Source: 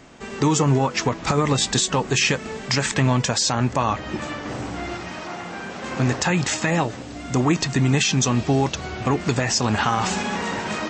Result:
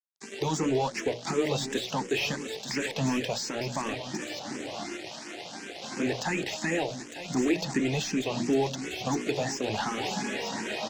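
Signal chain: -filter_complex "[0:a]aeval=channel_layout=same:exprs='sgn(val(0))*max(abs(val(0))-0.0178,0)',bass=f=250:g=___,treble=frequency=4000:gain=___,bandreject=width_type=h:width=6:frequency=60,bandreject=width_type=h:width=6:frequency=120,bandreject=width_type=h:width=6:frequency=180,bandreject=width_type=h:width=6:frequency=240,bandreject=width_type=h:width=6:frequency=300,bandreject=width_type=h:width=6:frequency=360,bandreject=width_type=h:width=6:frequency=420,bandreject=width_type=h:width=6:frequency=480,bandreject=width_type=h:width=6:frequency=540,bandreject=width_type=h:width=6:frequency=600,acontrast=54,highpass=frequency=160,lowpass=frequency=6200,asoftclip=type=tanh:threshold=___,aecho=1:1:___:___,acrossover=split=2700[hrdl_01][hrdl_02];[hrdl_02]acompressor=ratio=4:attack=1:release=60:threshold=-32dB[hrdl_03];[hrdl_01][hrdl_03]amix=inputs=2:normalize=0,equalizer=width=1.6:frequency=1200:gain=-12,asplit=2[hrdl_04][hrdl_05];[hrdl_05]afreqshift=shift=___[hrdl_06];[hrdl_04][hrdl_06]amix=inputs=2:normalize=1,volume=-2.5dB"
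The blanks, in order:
-6, 8, -12dB, 904, 0.251, 2.8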